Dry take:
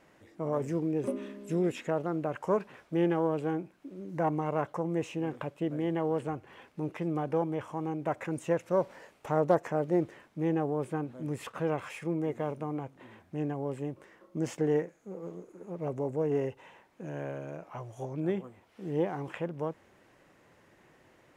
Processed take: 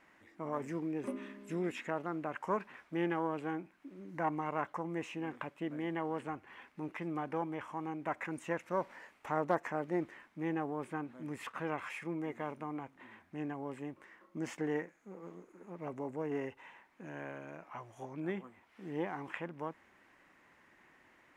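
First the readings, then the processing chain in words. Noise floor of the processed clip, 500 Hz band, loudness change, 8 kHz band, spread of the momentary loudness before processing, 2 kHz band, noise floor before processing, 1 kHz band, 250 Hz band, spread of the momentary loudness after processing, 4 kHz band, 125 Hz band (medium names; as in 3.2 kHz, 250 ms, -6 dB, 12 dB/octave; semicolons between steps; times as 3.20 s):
-67 dBFS, -8.5 dB, -6.5 dB, -6.0 dB, 13 LU, +1.0 dB, -63 dBFS, -2.5 dB, -6.5 dB, 13 LU, -3.5 dB, -10.0 dB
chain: graphic EQ 125/250/500/1000/2000 Hz -7/+4/-5/+5/+8 dB; trim -6.5 dB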